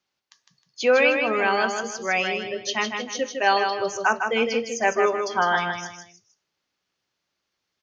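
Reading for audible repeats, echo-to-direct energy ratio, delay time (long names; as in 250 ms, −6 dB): 3, −5.0 dB, 156 ms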